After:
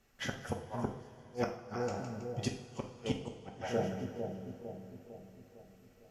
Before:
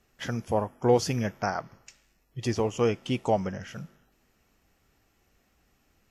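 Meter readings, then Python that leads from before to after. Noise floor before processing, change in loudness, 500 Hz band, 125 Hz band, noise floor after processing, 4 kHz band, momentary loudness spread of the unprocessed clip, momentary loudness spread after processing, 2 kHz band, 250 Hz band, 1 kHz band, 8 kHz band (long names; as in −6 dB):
−69 dBFS, −11.5 dB, −10.5 dB, −8.5 dB, −62 dBFS, −7.0 dB, 17 LU, 16 LU, −6.5 dB, −8.0 dB, −10.5 dB, −9.0 dB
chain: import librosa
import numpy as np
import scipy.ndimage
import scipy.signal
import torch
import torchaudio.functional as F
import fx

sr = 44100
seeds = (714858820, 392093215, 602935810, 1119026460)

y = fx.echo_split(x, sr, split_hz=630.0, low_ms=453, high_ms=161, feedback_pct=52, wet_db=-7.0)
y = fx.gate_flip(y, sr, shuts_db=-18.0, range_db=-37)
y = fx.rev_double_slope(y, sr, seeds[0], early_s=0.54, late_s=4.5, knee_db=-18, drr_db=2.5)
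y = F.gain(torch.from_numpy(y), -3.5).numpy()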